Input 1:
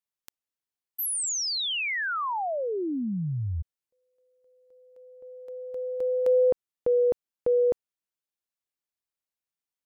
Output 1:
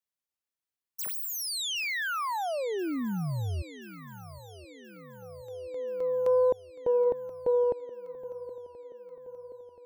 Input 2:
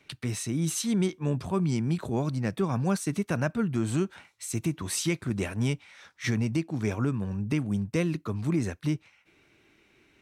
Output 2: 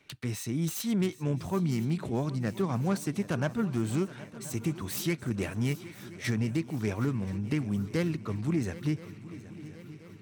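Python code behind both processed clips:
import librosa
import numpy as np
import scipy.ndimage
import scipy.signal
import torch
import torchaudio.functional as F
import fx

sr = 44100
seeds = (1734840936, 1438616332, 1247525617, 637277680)

y = fx.self_delay(x, sr, depth_ms=0.098)
y = fx.echo_swing(y, sr, ms=1028, ratio=3, feedback_pct=57, wet_db=-17.0)
y = y * librosa.db_to_amplitude(-2.0)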